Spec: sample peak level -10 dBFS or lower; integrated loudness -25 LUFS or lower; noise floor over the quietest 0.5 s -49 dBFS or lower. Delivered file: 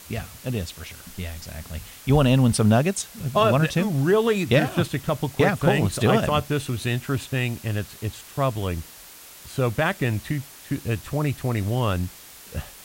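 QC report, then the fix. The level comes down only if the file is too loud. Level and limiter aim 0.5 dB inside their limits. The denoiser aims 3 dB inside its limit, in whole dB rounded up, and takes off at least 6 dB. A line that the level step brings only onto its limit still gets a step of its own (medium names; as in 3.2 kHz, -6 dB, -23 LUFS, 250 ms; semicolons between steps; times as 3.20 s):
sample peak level -6.5 dBFS: fail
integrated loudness -23.5 LUFS: fail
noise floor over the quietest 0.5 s -45 dBFS: fail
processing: noise reduction 6 dB, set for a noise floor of -45 dBFS; trim -2 dB; peak limiter -10.5 dBFS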